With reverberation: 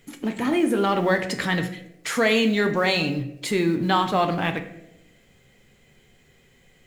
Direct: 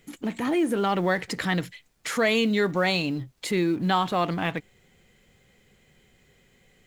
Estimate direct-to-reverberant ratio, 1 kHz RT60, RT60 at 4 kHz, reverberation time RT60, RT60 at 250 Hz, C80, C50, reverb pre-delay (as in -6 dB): 6.0 dB, 0.70 s, 0.50 s, 0.90 s, 1.0 s, 13.5 dB, 11.5 dB, 7 ms